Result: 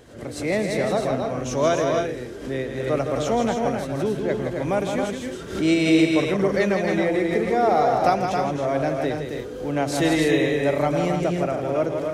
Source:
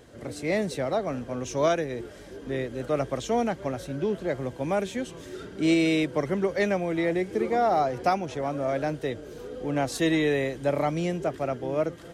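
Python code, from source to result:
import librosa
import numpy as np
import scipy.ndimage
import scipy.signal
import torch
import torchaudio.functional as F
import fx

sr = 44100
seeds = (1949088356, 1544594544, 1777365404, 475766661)

y = fx.echo_multitap(x, sr, ms=(102, 164, 271, 311), db=(-16.5, -6.0, -5.0, -9.0))
y = fx.pre_swell(y, sr, db_per_s=100.0)
y = y * librosa.db_to_amplitude(2.5)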